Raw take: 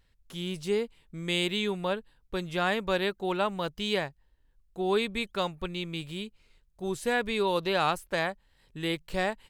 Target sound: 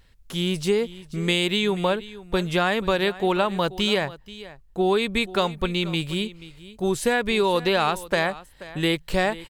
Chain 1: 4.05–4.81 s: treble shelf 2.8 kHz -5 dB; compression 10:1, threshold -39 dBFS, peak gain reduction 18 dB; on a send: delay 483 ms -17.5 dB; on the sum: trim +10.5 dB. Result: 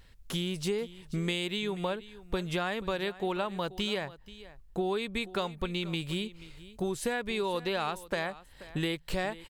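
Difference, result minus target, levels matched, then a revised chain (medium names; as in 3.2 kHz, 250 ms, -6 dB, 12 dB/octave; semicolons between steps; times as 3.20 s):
compression: peak gain reduction +10.5 dB
4.05–4.81 s: treble shelf 2.8 kHz -5 dB; compression 10:1, threshold -27.5 dBFS, peak gain reduction 7.5 dB; on a send: delay 483 ms -17.5 dB; on the sum: trim +10.5 dB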